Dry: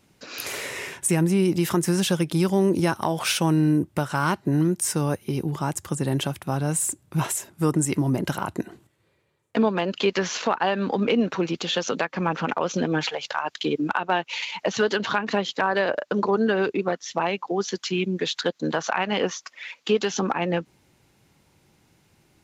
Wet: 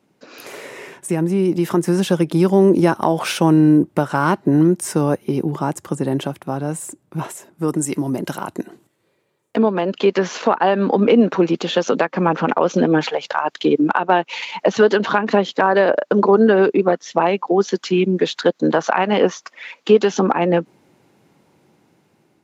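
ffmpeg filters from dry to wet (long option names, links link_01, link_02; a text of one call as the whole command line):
ffmpeg -i in.wav -filter_complex "[0:a]asettb=1/sr,asplit=3[link_01][link_02][link_03];[link_01]atrim=end=7.684[link_04];[link_02]atrim=start=7.68:end=9.56,asetpts=PTS-STARTPTS,afade=type=in:duration=0.004:curve=qsin,afade=type=out:start_time=1.876:duration=0.004:curve=qsin,highshelf=frequency=3100:gain=11[link_05];[link_03]atrim=start=9.556[link_06];[link_04][link_05]acrossfade=duration=0.004:curve1=hsin:curve2=qsin[link_07];[link_07][link_06]acrossfade=duration=0.004:curve1=qsin:curve2=hsin,dynaudnorm=framelen=720:gausssize=5:maxgain=11.5dB,highpass=200,tiltshelf=frequency=1500:gain=6,volume=-3dB" out.wav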